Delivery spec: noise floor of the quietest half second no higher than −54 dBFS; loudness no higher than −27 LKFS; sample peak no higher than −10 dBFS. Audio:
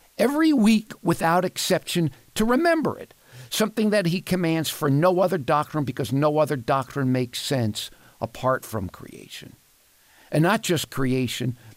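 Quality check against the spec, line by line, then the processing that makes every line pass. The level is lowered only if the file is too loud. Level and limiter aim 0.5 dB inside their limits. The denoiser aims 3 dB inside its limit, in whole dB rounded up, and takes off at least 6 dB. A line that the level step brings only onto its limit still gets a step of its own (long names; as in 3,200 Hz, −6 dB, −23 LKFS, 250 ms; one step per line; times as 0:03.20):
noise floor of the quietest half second −59 dBFS: in spec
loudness −23.0 LKFS: out of spec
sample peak −8.0 dBFS: out of spec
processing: level −4.5 dB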